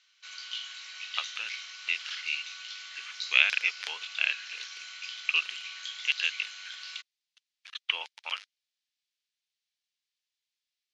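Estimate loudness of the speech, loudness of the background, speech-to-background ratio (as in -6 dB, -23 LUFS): -30.0 LUFS, -39.0 LUFS, 9.0 dB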